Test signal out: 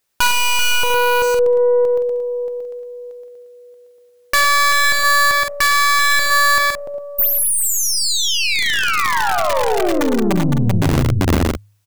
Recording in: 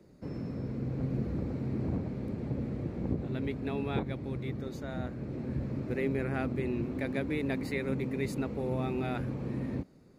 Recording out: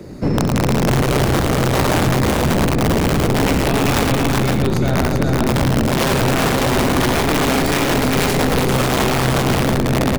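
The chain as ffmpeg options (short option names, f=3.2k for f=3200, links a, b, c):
-filter_complex "[0:a]equalizer=f=80:w=2:g=2,bandreject=f=102.9:t=h:w=4,bandreject=f=205.8:t=h:w=4,bandreject=f=308.7:t=h:w=4,bandreject=f=411.6:t=h:w=4,bandreject=f=514.5:t=h:w=4,bandreject=f=617.4:t=h:w=4,bandreject=f=720.3:t=h:w=4,bandreject=f=823.2:t=h:w=4,bandreject=f=926.1:t=h:w=4,bandreject=f=1.029k:t=h:w=4,bandreject=f=1.1319k:t=h:w=4,bandreject=f=1.2348k:t=h:w=4,bandreject=f=1.3377k:t=h:w=4,bandreject=f=1.4406k:t=h:w=4,bandreject=f=1.5435k:t=h:w=4,bandreject=f=1.6464k:t=h:w=4,bandreject=f=1.7493k:t=h:w=4,bandreject=f=1.8522k:t=h:w=4,bandreject=f=1.9551k:t=h:w=4,bandreject=f=2.058k:t=h:w=4,bandreject=f=2.1609k:t=h:w=4,bandreject=f=2.2638k:t=h:w=4,bandreject=f=2.3667k:t=h:w=4,aeval=exprs='(tanh(39.8*val(0)+0.45)-tanh(0.45))/39.8':c=same,aeval=exprs='(mod(33.5*val(0)+1,2)-1)/33.5':c=same,asplit=2[a][b];[b]aecho=0:1:68|109|388|511|558:0.299|0.473|0.631|0.422|0.224[c];[a][c]amix=inputs=2:normalize=0,alimiter=level_in=33dB:limit=-1dB:release=50:level=0:latency=1,volume=-7.5dB"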